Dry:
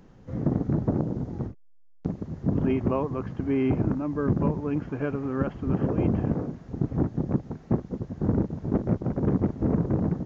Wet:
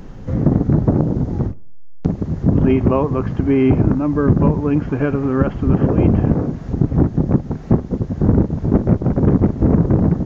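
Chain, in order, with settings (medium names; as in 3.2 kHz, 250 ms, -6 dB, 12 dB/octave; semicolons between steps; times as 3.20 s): bass shelf 75 Hz +9 dB; in parallel at +2.5 dB: compression, threshold -35 dBFS, peak gain reduction 17.5 dB; on the sum: two-slope reverb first 0.57 s, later 1.9 s, from -26 dB, DRR 19 dB; trim +7 dB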